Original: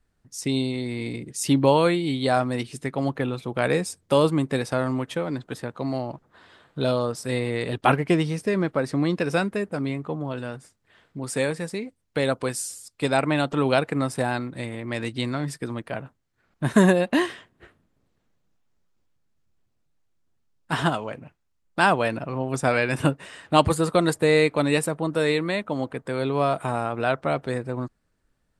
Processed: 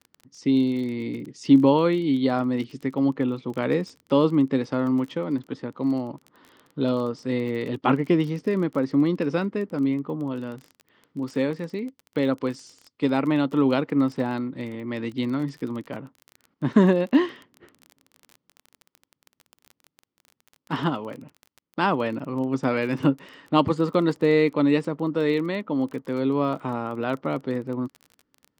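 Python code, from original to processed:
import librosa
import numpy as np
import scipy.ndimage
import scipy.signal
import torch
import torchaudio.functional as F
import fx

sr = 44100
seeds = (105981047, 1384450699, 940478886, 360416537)

y = fx.cabinet(x, sr, low_hz=140.0, low_slope=12, high_hz=4700.0, hz=(270.0, 690.0, 1600.0, 2500.0, 3900.0), db=(7, -9, -8, -6, -7))
y = fx.dmg_crackle(y, sr, seeds[0], per_s=23.0, level_db=-33.0)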